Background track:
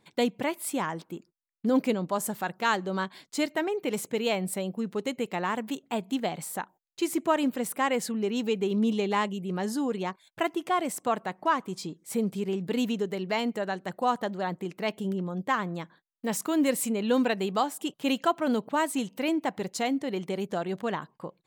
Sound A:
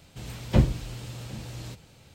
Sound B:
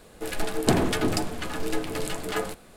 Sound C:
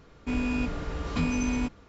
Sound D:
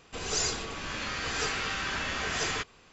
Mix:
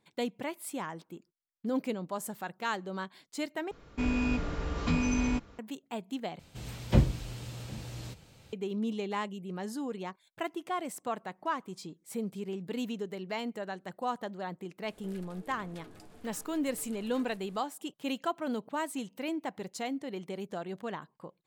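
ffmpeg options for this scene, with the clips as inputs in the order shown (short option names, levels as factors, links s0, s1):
-filter_complex "[0:a]volume=0.422[s0];[2:a]acompressor=threshold=0.0126:ratio=6:attack=3.2:release=140:knee=1:detection=peak[s1];[s0]asplit=3[s2][s3][s4];[s2]atrim=end=3.714[s5];[3:a]atrim=end=1.88,asetpts=PTS-STARTPTS,volume=0.891[s6];[s3]atrim=start=5.586:end=6.394[s7];[1:a]atrim=end=2.14,asetpts=PTS-STARTPTS,volume=0.708[s8];[s4]atrim=start=8.526[s9];[s1]atrim=end=2.76,asetpts=PTS-STARTPTS,volume=0.266,afade=t=in:d=0.004:c=hsin,afade=t=out:st=2.756:d=0.004:c=hsin,adelay=14830[s10];[s5][s6]acrossfade=d=0.004:c1=hsin:c2=hsin[s11];[s11][s7]acrossfade=d=0.004:c1=hsin:c2=hsin[s12];[s12][s8]acrossfade=d=0.004:c1=hsin:c2=hsin[s13];[s13][s9]acrossfade=d=0.004:c1=hsin:c2=hsin[s14];[s14][s10]amix=inputs=2:normalize=0"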